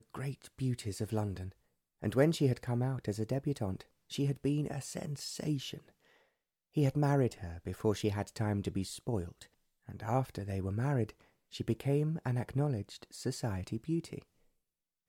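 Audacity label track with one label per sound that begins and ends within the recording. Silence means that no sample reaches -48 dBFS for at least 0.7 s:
6.760000	14.220000	sound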